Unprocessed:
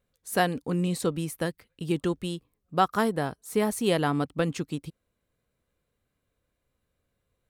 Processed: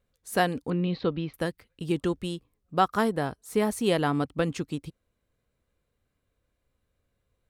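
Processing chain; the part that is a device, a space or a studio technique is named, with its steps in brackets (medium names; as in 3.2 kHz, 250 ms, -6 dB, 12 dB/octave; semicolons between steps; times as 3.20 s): 0.70–1.34 s: steep low-pass 4.4 kHz 48 dB/octave; low shelf boost with a cut just above (bass shelf 110 Hz +4.5 dB; peaking EQ 160 Hz -2.5 dB 0.54 oct); treble shelf 9.4 kHz -5 dB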